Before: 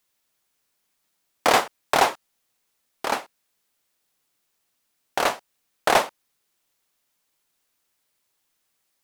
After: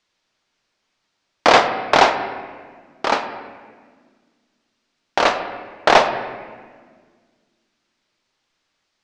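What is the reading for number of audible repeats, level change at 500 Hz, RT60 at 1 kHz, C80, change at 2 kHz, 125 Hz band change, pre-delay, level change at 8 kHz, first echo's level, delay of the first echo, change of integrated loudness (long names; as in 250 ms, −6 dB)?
no echo audible, +7.0 dB, 1.5 s, 10.5 dB, +6.5 dB, +6.5 dB, 3 ms, −1.5 dB, no echo audible, no echo audible, +5.5 dB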